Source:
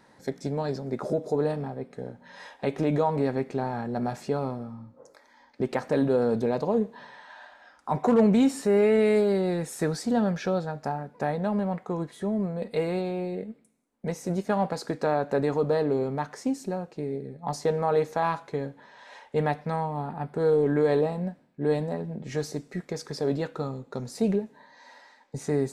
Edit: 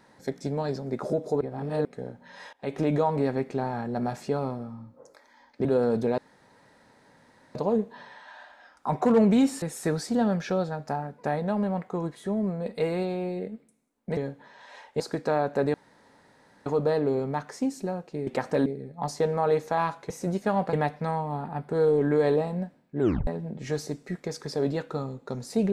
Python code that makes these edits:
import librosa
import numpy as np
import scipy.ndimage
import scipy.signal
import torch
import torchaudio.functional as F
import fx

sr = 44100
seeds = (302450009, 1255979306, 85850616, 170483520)

y = fx.edit(x, sr, fx.reverse_span(start_s=1.41, length_s=0.44),
    fx.fade_in_from(start_s=2.53, length_s=0.26, floor_db=-22.0),
    fx.move(start_s=5.65, length_s=0.39, to_s=17.11),
    fx.insert_room_tone(at_s=6.57, length_s=1.37),
    fx.cut(start_s=8.64, length_s=0.94),
    fx.swap(start_s=14.13, length_s=0.63, other_s=18.55, other_length_s=0.83),
    fx.insert_room_tone(at_s=15.5, length_s=0.92),
    fx.tape_stop(start_s=21.65, length_s=0.27), tone=tone)